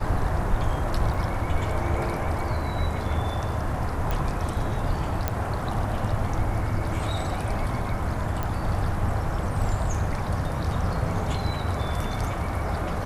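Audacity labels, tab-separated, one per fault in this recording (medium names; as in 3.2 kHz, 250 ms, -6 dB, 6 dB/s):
1.140000	1.140000	dropout 4.1 ms
4.110000	4.110000	pop -14 dBFS
5.280000	5.280000	pop -10 dBFS
8.430000	8.430000	pop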